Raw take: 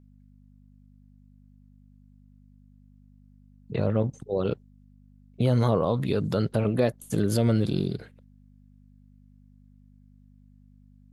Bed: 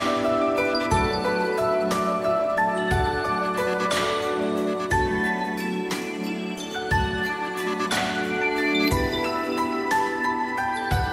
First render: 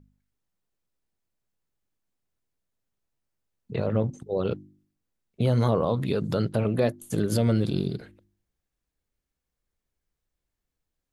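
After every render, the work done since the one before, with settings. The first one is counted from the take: de-hum 50 Hz, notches 7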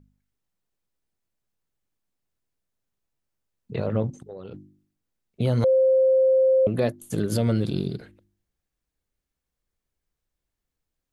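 4.10–4.54 s: compression, threshold -36 dBFS; 5.64–6.67 s: bleep 525 Hz -15 dBFS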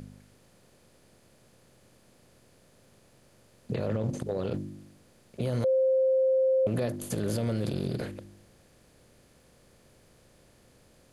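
spectral levelling over time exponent 0.6; peak limiter -20.5 dBFS, peak gain reduction 11.5 dB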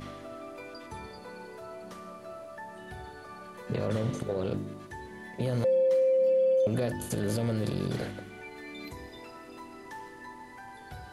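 add bed -21 dB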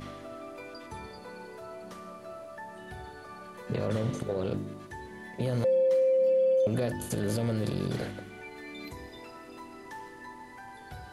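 no audible change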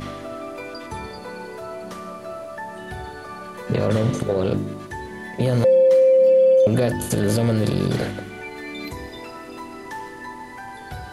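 trim +10 dB

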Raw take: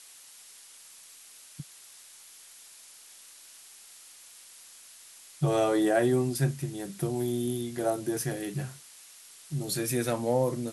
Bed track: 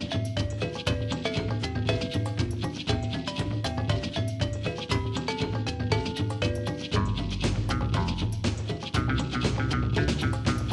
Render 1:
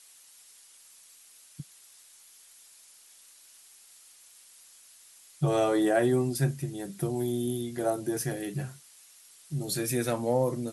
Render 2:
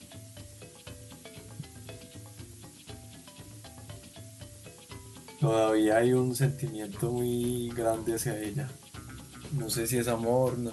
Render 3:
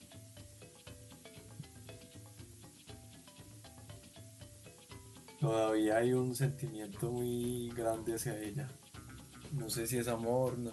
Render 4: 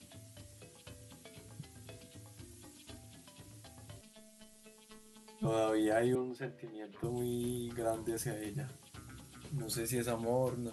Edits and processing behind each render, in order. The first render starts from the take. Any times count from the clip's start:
noise reduction 6 dB, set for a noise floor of -52 dBFS
add bed track -19 dB
trim -7 dB
2.43–2.98 s: comb 3.3 ms; 4.01–5.45 s: robot voice 217 Hz; 6.15–7.04 s: three-band isolator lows -20 dB, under 240 Hz, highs -23 dB, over 3.5 kHz

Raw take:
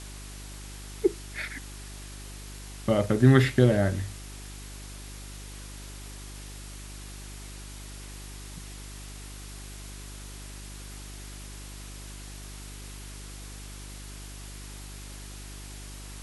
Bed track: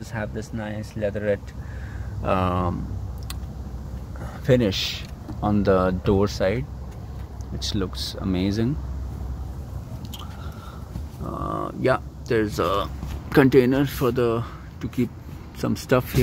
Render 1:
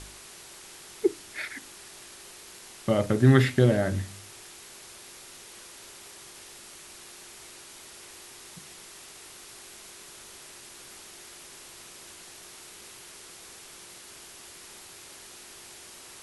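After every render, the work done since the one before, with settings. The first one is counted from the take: de-hum 50 Hz, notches 6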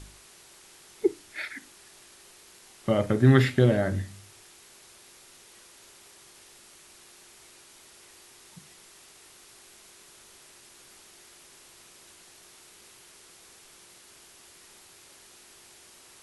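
noise print and reduce 6 dB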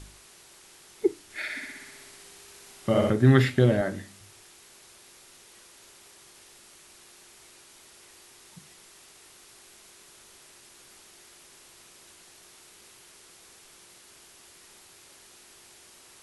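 1.24–3.10 s: flutter echo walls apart 10.7 m, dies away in 1.3 s; 3.81–4.21 s: high-pass 200 Hz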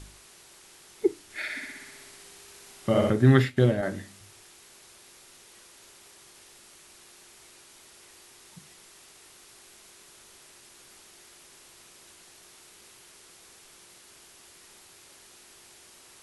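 3.37–3.83 s: upward expansion, over -40 dBFS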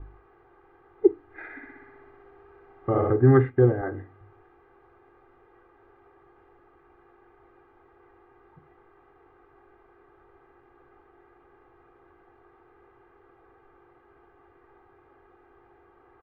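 low-pass 1.4 kHz 24 dB/octave; comb 2.5 ms, depth 95%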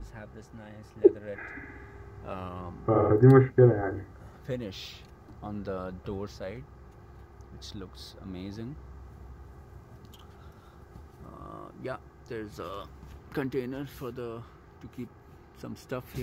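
add bed track -16.5 dB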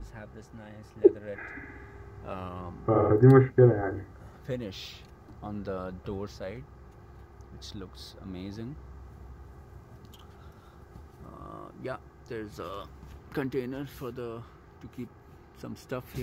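no audible change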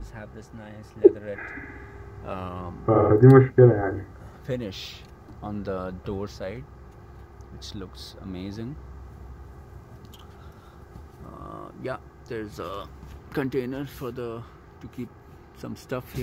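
trim +4.5 dB

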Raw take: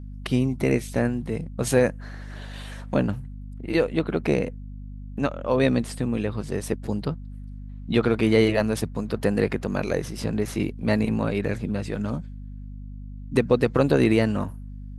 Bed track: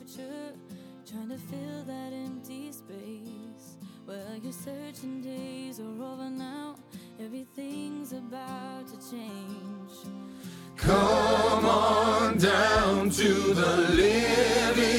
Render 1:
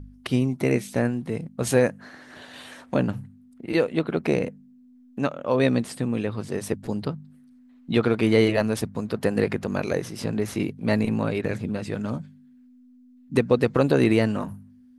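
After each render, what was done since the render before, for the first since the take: de-hum 50 Hz, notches 4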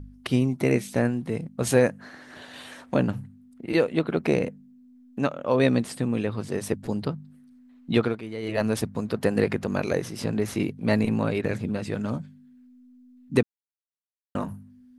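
7.97–8.67 s: dip -16 dB, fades 0.25 s; 13.43–14.35 s: mute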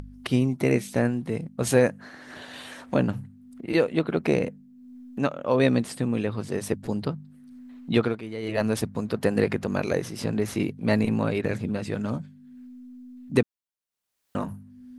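upward compressor, threshold -36 dBFS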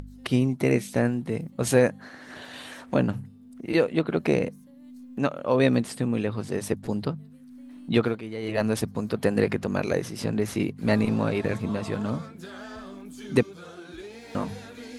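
add bed track -19.5 dB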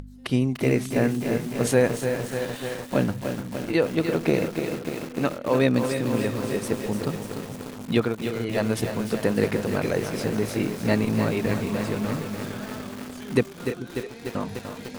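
two-band feedback delay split 330 Hz, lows 438 ms, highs 330 ms, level -12.5 dB; bit-crushed delay 296 ms, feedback 80%, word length 6-bit, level -7 dB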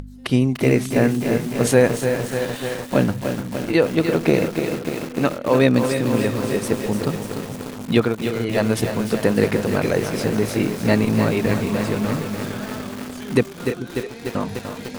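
trim +5 dB; peak limiter -2 dBFS, peak gain reduction 2 dB

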